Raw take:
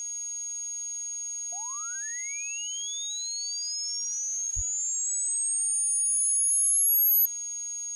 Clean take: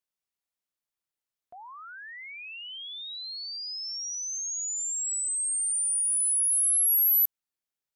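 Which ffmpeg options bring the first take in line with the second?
ffmpeg -i in.wav -filter_complex "[0:a]adeclick=threshold=4,bandreject=frequency=6600:width=30,asplit=3[link_01][link_02][link_03];[link_01]afade=type=out:start_time=4.55:duration=0.02[link_04];[link_02]highpass=frequency=140:width=0.5412,highpass=frequency=140:width=1.3066,afade=type=in:start_time=4.55:duration=0.02,afade=type=out:start_time=4.67:duration=0.02[link_05];[link_03]afade=type=in:start_time=4.67:duration=0.02[link_06];[link_04][link_05][link_06]amix=inputs=3:normalize=0,afftdn=noise_reduction=30:noise_floor=-35" out.wav

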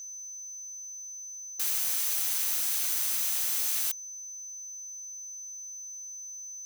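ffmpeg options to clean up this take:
ffmpeg -i in.wav -af "bandreject=frequency=6100:width=30,agate=range=-21dB:threshold=-34dB" out.wav

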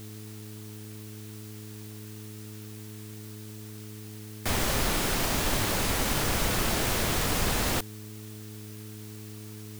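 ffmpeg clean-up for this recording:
ffmpeg -i in.wav -af "adeclick=threshold=4,bandreject=frequency=106.8:width_type=h:width=4,bandreject=frequency=213.6:width_type=h:width=4,bandreject=frequency=320.4:width_type=h:width=4,bandreject=frequency=427.2:width_type=h:width=4,afwtdn=0.0032" out.wav

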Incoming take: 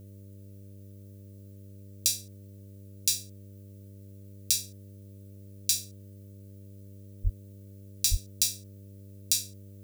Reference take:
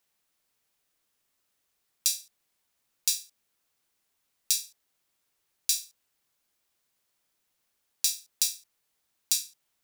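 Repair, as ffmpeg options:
ffmpeg -i in.wav -filter_complex "[0:a]bandreject=frequency=99.2:width_type=h:width=4,bandreject=frequency=198.4:width_type=h:width=4,bandreject=frequency=297.6:width_type=h:width=4,bandreject=frequency=396.8:width_type=h:width=4,bandreject=frequency=496:width_type=h:width=4,bandreject=frequency=595.2:width_type=h:width=4,asplit=3[link_01][link_02][link_03];[link_01]afade=type=out:start_time=7.23:duration=0.02[link_04];[link_02]highpass=frequency=140:width=0.5412,highpass=frequency=140:width=1.3066,afade=type=in:start_time=7.23:duration=0.02,afade=type=out:start_time=7.35:duration=0.02[link_05];[link_03]afade=type=in:start_time=7.35:duration=0.02[link_06];[link_04][link_05][link_06]amix=inputs=3:normalize=0,asplit=3[link_07][link_08][link_09];[link_07]afade=type=out:start_time=8.1:duration=0.02[link_10];[link_08]highpass=frequency=140:width=0.5412,highpass=frequency=140:width=1.3066,afade=type=in:start_time=8.1:duration=0.02,afade=type=out:start_time=8.22:duration=0.02[link_11];[link_09]afade=type=in:start_time=8.22:duration=0.02[link_12];[link_10][link_11][link_12]amix=inputs=3:normalize=0,agate=range=-21dB:threshold=-40dB" out.wav

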